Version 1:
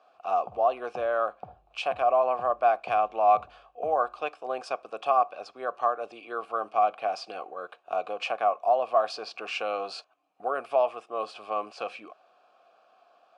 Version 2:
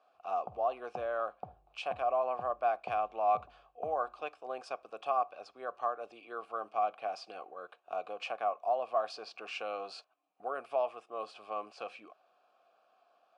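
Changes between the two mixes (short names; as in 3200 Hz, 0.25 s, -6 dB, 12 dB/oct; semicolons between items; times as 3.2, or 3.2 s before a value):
speech -8.0 dB; background: send -7.5 dB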